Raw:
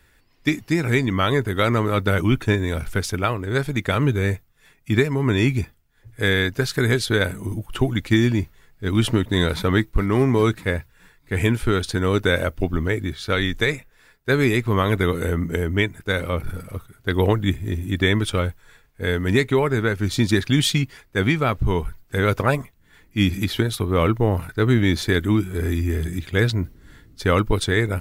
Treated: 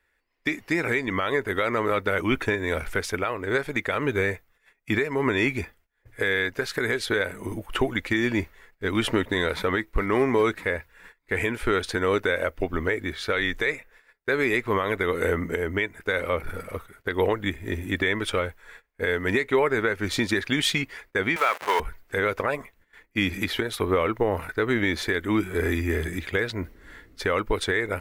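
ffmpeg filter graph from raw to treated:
-filter_complex "[0:a]asettb=1/sr,asplit=3[a][b][c];[a]atrim=end=21.364[d];[b]atrim=start=21.36:end=21.8,asetpts=PTS-STARTPTS,afade=t=in:d=0.004:c=qsin,afade=t=out:st=0.436:d=0.004:c=qsin,aeval=exprs='val(0)+0.5*0.0596*sgn(val(0))':c=same,highpass=800,acontrast=69[e];[c]atrim=start=21.796[f];[d][e]acrossfade=d=0.004:c1=hsin:c2=qsin[g];[g][f]acrossfade=d=0.004:c1=qsin:c2=hsin,agate=range=-16dB:threshold=-50dB:ratio=16:detection=peak,equalizer=f=125:t=o:w=1:g=-9,equalizer=f=500:t=o:w=1:g=7,equalizer=f=1k:t=o:w=1:g=4,equalizer=f=2k:t=o:w=1:g=9,alimiter=limit=-9.5dB:level=0:latency=1:release=270,volume=-2.5dB"

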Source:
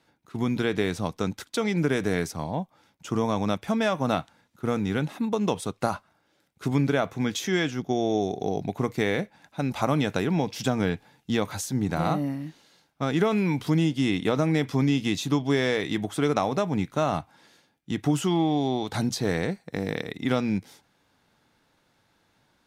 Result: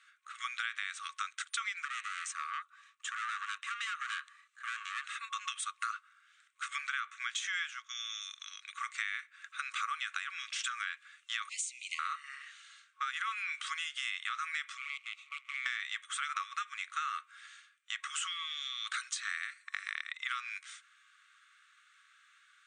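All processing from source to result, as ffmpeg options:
-filter_complex "[0:a]asettb=1/sr,asplit=3[a][b][c];[a]atrim=end=1.854[d];[b]atrim=start=1.85:end=5.05,asetpts=PTS-STARTPTS,afade=t=in:d=0.004:c=qsin,afade=t=out:st=3.196:d=0.004:c=qsin,aeval=exprs='(tanh(31.6*val(0)+0.65)-tanh(0.65))/31.6':c=same,afreqshift=290[e];[c]atrim=start=5.046[f];[d][e]acrossfade=d=0.004:c1=hsin:c2=qsin[g];[g][f]acrossfade=d=0.004:c1=qsin:c2=hsin,asettb=1/sr,asplit=3[h][i][j];[h]atrim=end=11.494[k];[i]atrim=start=11.49:end=11.99,asetpts=PTS-STARTPTS,afade=t=in:d=0.004:c=qsin,afade=t=out:st=0.496:d=0.004:c=qsin,afreqshift=470,acrusher=bits=8:mix=0:aa=0.5,asuperstop=centerf=1400:order=12:qfactor=1.1[l];[j]atrim=start=11.986[m];[k][l]acrossfade=d=0.004:c1=hsin:c2=qsin[n];[n][m]acrossfade=d=0.004:c1=qsin:c2=hsin,asettb=1/sr,asplit=3[o][p][q];[o]atrim=end=14.774[r];[p]atrim=start=14.77:end=15.66,asetpts=PTS-STARTPTS,afade=t=in:d=0.004:c=qsin,afade=t=out:st=0.886:d=0.004:c=qsin,acrusher=bits=4:dc=4:mix=0:aa=0.000001,asplit=3[s][t][u];[s]bandpass=f=300:t=q:w=8,volume=0dB[v];[t]bandpass=f=870:t=q:w=8,volume=-6dB[w];[u]bandpass=f=2.24k:t=q:w=8,volume=-9dB[x];[v][w][x]amix=inputs=3:normalize=0[y];[q]atrim=start=15.656[z];[r][y]acrossfade=d=0.004:c1=hsin:c2=qsin[aa];[aa][z]acrossfade=d=0.004:c1=qsin:c2=hsin,afftfilt=real='re*between(b*sr/4096,1100,9200)':imag='im*between(b*sr/4096,1100,9200)':win_size=4096:overlap=0.75,equalizer=f=4.9k:t=o:w=0.62:g=-12.5,acompressor=threshold=-43dB:ratio=4,volume=8dB"

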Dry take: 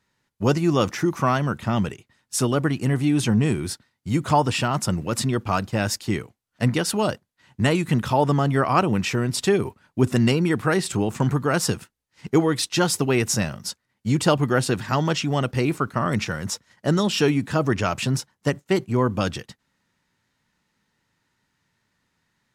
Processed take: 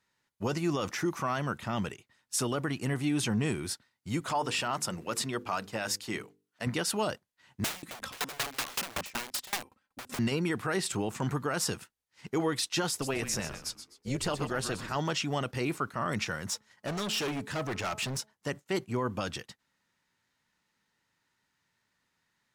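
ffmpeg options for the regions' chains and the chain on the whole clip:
-filter_complex "[0:a]asettb=1/sr,asplit=3[a][b][c];[a]atrim=end=4.204[d];[b]atrim=start=4.2:end=6.67,asetpts=PTS-STARTPTS,afade=t=in:d=0.004:c=qsin,afade=t=out:st=2.466:d=0.004:c=qsin,highpass=f=210:p=1,bandreject=f=50:t=h:w=6,bandreject=f=100:t=h:w=6,bandreject=f=150:t=h:w=6,bandreject=f=200:t=h:w=6,bandreject=f=250:t=h:w=6,bandreject=f=300:t=h:w=6,bandreject=f=350:t=h:w=6,bandreject=f=400:t=h:w=6,bandreject=f=450:t=h:w=6,bandreject=f=500:t=h:w=6[e];[c]atrim=start=6.666[f];[d][e]acrossfade=d=0.004:c1=hsin:c2=qsin[g];[g][f]acrossfade=d=0.004:c1=qsin:c2=hsin,asettb=1/sr,asplit=3[h][i][j];[h]atrim=end=7.644[k];[i]atrim=start=7.64:end=10.19,asetpts=PTS-STARTPTS,afade=t=in:d=0.004:c=qsin,afade=t=out:st=2.546:d=0.004:c=qsin,aecho=1:1:3.8:0.68,atrim=end_sample=112455,aeval=exprs='(mod(8.41*val(0)+1,2)-1)/8.41':c=same,aeval=exprs='val(0)*pow(10,-25*if(lt(mod(5.3*n/s,1),2*abs(5.3)/1000),1-mod(5.3*n/s,1)/(2*abs(5.3)/1000),(mod(5.3*n/s,1)-2*abs(5.3)/1000)/(1-2*abs(5.3)/1000))/20)':c=same[l];[j]atrim=start=10.186[m];[k][l]acrossfade=d=0.004:c1=hsin:c2=qsin[n];[n][m]acrossfade=d=0.004:c1=qsin:c2=hsin,asettb=1/sr,asplit=3[o][p][q];[o]atrim=end=12.894[r];[p]atrim=start=12.89:end=14.96,asetpts=PTS-STARTPTS,afade=t=in:d=0.004:c=qsin,afade=t=out:st=2.066:d=0.004:c=qsin,tremolo=f=270:d=0.621,asplit=5[s][t][u][v][w];[t]adelay=127,afreqshift=-140,volume=-11dB[x];[u]adelay=254,afreqshift=-280,volume=-20.4dB[y];[v]adelay=381,afreqshift=-420,volume=-29.7dB[z];[w]adelay=508,afreqshift=-560,volume=-39.1dB[aa];[s][x][y][z][aa]amix=inputs=5:normalize=0,atrim=end_sample=91287[ab];[q]atrim=start=14.956[ac];[r][ab]acrossfade=d=0.004:c1=hsin:c2=qsin[ad];[ad][ac]acrossfade=d=0.004:c1=qsin:c2=hsin,asettb=1/sr,asplit=3[ae][af][ag];[ae]atrim=end=16.474[ah];[af]atrim=start=16.47:end=18.33,asetpts=PTS-STARTPTS,afade=t=in:d=0.004:c=qsin,afade=t=out:st=1.856:d=0.004:c=qsin,bandreject=f=214.4:t=h:w=4,bandreject=f=428.8:t=h:w=4,bandreject=f=643.2:t=h:w=4,bandreject=f=857.6:t=h:w=4,bandreject=f=1.072k:t=h:w=4,bandreject=f=1.2864k:t=h:w=4,asoftclip=type=hard:threshold=-23dB[ai];[ag]atrim=start=18.326[aj];[ah][ai]acrossfade=d=0.004:c1=hsin:c2=qsin[ak];[ak][aj]acrossfade=d=0.004:c1=qsin:c2=hsin,lowshelf=f=380:g=-7.5,alimiter=limit=-16.5dB:level=0:latency=1:release=14,volume=-4dB"

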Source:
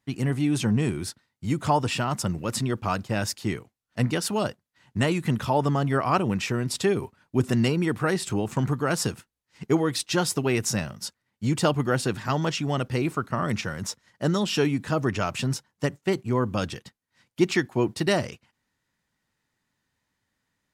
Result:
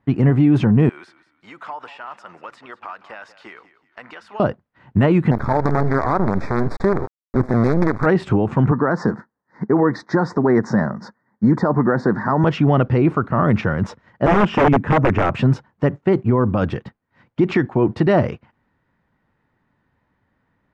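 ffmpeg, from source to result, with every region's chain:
-filter_complex "[0:a]asettb=1/sr,asplit=3[a][b][c];[a]atrim=end=0.894[d];[b]atrim=start=0.89:end=4.4,asetpts=PTS-STARTPTS,afade=t=in:d=0.004:c=qsin,afade=t=out:st=3.506:d=0.004:c=qsin,highpass=1.2k,acompressor=threshold=-42dB:ratio=4:attack=3.2:release=140:knee=1:detection=peak,asplit=4[e][f][g][h];[f]adelay=186,afreqshift=-32,volume=-16dB[i];[g]adelay=372,afreqshift=-64,volume=-25.9dB[j];[h]adelay=558,afreqshift=-96,volume=-35.8dB[k];[e][i][j][k]amix=inputs=4:normalize=0,atrim=end_sample=154791[l];[c]atrim=start=4.396[m];[d][l]acrossfade=d=0.004:c1=hsin:c2=qsin[n];[n][m]acrossfade=d=0.004:c1=qsin:c2=hsin,asettb=1/sr,asplit=3[o][p][q];[o]atrim=end=5.314[r];[p]atrim=start=5.31:end=8.06,asetpts=PTS-STARTPTS,afade=t=in:d=0.004:c=qsin,afade=t=out:st=2.746:d=0.004:c=qsin,acrusher=bits=4:dc=4:mix=0:aa=0.000001,asuperstop=centerf=2900:order=4:qfactor=1.6[s];[q]atrim=start=8.056[t];[r][s]acrossfade=d=0.004:c1=hsin:c2=qsin[u];[u][t]acrossfade=d=0.004:c1=qsin:c2=hsin,asettb=1/sr,asplit=3[v][w][x];[v]atrim=end=8.714[y];[w]atrim=start=8.71:end=12.44,asetpts=PTS-STARTPTS,afade=t=in:d=0.004:c=qsin,afade=t=out:st=3.726:d=0.004:c=qsin,asuperstop=centerf=2800:order=4:qfactor=1.1,highpass=170,equalizer=f=210:t=q:w=4:g=6,equalizer=f=980:t=q:w=4:g=5,equalizer=f=1.8k:t=q:w=4:g=8,equalizer=f=3.1k:t=q:w=4:g=-6,lowpass=f=6.6k:w=0.5412,lowpass=f=6.6k:w=1.3066[z];[x]atrim=start=12.436[aa];[y][z]acrossfade=d=0.004:c1=hsin:c2=qsin[ab];[ab][aa]acrossfade=d=0.004:c1=qsin:c2=hsin,asettb=1/sr,asplit=3[ac][ad][ae];[ac]atrim=end=14.264[af];[ad]atrim=start=14.26:end=15.34,asetpts=PTS-STARTPTS,afade=t=in:d=0.004:c=qsin,afade=t=out:st=1.076:d=0.004:c=qsin,aeval=exprs='(mod(8.91*val(0)+1,2)-1)/8.91':c=same,lowpass=7.5k,equalizer=f=4.2k:w=2.7:g=-11[ag];[ae]atrim=start=15.336[ah];[af][ag]acrossfade=d=0.004:c1=hsin:c2=qsin[ai];[ai][ah]acrossfade=d=0.004:c1=qsin:c2=hsin,lowpass=1.4k,alimiter=level_in=19.5dB:limit=-1dB:release=50:level=0:latency=1,volume=-6dB"

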